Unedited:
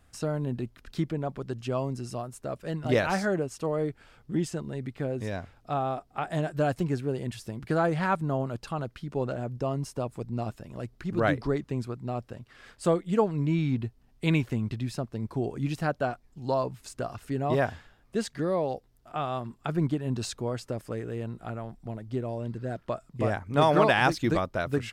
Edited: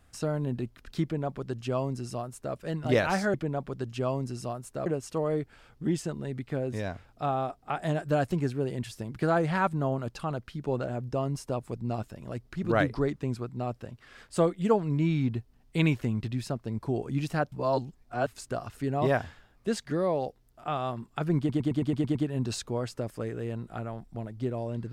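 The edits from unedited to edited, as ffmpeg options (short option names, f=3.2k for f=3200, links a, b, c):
-filter_complex "[0:a]asplit=12[a][b][c][d][e][f][g][h][i][j][k][l];[a]atrim=end=3.342[m];[b]atrim=start=1.028:end=2.552[n];[c]atrim=start=3.338:end=16.002[o];[d]atrim=start=15.998:end=16.752,asetpts=PTS-STARTPTS,areverse[p];[e]atrim=start=16.748:end=19.972[q];[f]atrim=start=19.858:end=19.972[r];[g]atrim=start=19.858:end=19.972[s];[h]atrim=start=19.858:end=19.972[t];[i]atrim=start=19.858:end=19.972[u];[j]atrim=start=19.858:end=19.972[v];[k]atrim=start=19.858:end=19.972[w];[l]atrim=start=19.858[x];[m][n]acrossfade=d=0.004:c1=hsin:c2=hsin[y];[y][o]acrossfade=d=0.004:c1=hsin:c2=hsin[z];[z][p]acrossfade=d=0.004:c1=hsin:c2=hsin[aa];[aa][q]acrossfade=d=0.004:c1=hsin:c2=hsin[ab];[ab][r]acrossfade=d=0.004:c1=hsin:c2=hsin[ac];[ac][s]acrossfade=d=0.004:c1=hsin:c2=hsin[ad];[ad][t]acrossfade=d=0.004:c1=hsin:c2=hsin[ae];[ae][u]acrossfade=d=0.004:c1=hsin:c2=hsin[af];[af][v]acrossfade=d=0.004:c1=hsin:c2=hsin[ag];[ag][w]acrossfade=d=0.004:c1=hsin:c2=hsin[ah];[ah][x]acrossfade=d=0.004:c1=hsin:c2=hsin"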